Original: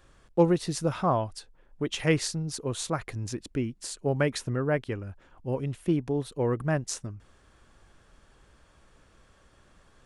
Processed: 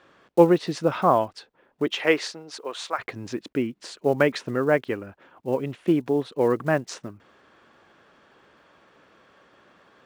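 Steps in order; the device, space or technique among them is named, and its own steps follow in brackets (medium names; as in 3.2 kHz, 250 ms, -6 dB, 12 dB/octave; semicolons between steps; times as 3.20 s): 1.91–2.98 s: high-pass 280 Hz -> 870 Hz 12 dB/octave; early digital voice recorder (band-pass 240–3500 Hz; block-companded coder 7-bit); trim +7 dB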